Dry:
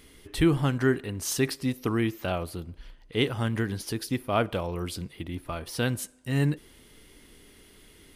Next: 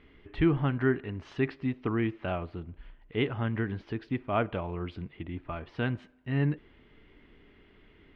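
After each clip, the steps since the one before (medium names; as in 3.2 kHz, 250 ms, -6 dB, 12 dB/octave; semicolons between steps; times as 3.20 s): low-pass 2.7 kHz 24 dB/octave; band-stop 510 Hz, Q 12; trim -2.5 dB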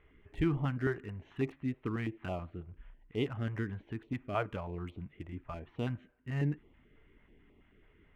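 local Wiener filter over 9 samples; step-sequenced notch 9.2 Hz 240–1600 Hz; trim -4 dB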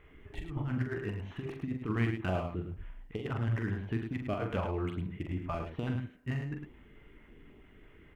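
compressor with a negative ratio -36 dBFS, ratio -0.5; on a send: multi-tap echo 43/106 ms -6.5/-7 dB; on the sum: trim +3 dB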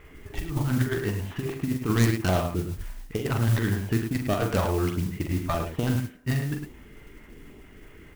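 tracing distortion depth 0.29 ms; modulation noise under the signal 19 dB; trim +8.5 dB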